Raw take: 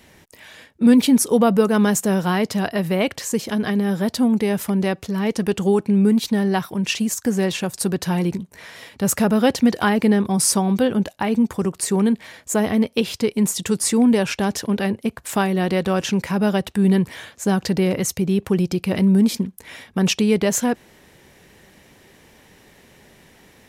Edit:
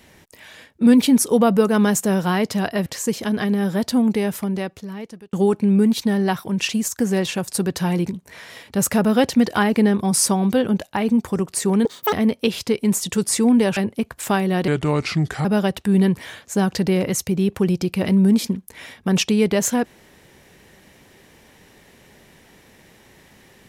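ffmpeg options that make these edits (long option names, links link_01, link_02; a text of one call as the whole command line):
ffmpeg -i in.wav -filter_complex "[0:a]asplit=8[link_01][link_02][link_03][link_04][link_05][link_06][link_07][link_08];[link_01]atrim=end=2.862[link_09];[link_02]atrim=start=3.118:end=5.59,asetpts=PTS-STARTPTS,afade=type=out:start_time=1.242:duration=1.23[link_10];[link_03]atrim=start=5.59:end=12.114,asetpts=PTS-STARTPTS,afade=type=in:duration=0.004:curve=hsin[link_11];[link_04]atrim=start=12.11:end=12.66,asetpts=PTS-STARTPTS,asetrate=87759,aresample=44100,atrim=end_sample=12188,asetpts=PTS-STARTPTS[link_12];[link_05]atrim=start=12.656:end=14.302[link_13];[link_06]atrim=start=14.828:end=15.744[link_14];[link_07]atrim=start=15.74:end=16.35,asetpts=PTS-STARTPTS,asetrate=34839,aresample=44100[link_15];[link_08]atrim=start=16.346[link_16];[link_10][link_11]concat=n=2:v=0:a=1[link_17];[link_09][link_17]acrossfade=duration=0.004:curve1=hsin:curve2=hsin[link_18];[link_18][link_12]acrossfade=duration=0.004:curve1=hsin:curve2=hsin[link_19];[link_19][link_13]acrossfade=duration=0.004:curve1=hsin:curve2=hsin[link_20];[link_20][link_14]acrossfade=duration=0.004:curve1=hsin:curve2=hsin[link_21];[link_21][link_15]acrossfade=duration=0.004:curve1=hsin:curve2=hsin[link_22];[link_22][link_16]acrossfade=duration=0.004:curve1=hsin:curve2=hsin" out.wav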